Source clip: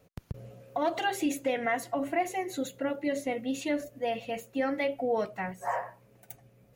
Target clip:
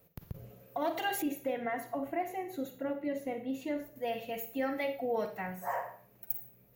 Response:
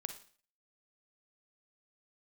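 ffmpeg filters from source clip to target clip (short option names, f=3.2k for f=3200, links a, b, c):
-filter_complex "[1:a]atrim=start_sample=2205[a];[0:a][a]afir=irnorm=-1:irlink=0,aexciter=amount=3.4:drive=9.5:freq=12k,asettb=1/sr,asplit=3[b][c][d];[b]atrim=end=1.224[e];[c]atrim=start=1.22:end=3.96,asetpts=PTS-STARTPTS,afade=t=in:d=0.004:c=qsin,afade=t=out:st=2.736:d=0.004:c=qsin,highshelf=f=2.3k:g=-12[f];[d]atrim=start=3.956[g];[e][f]acrossfade=d=0.004:c1=hsin:c2=qsin[h];[h][g]acrossfade=d=0.004:c1=qsin:c2=hsin,volume=-2dB"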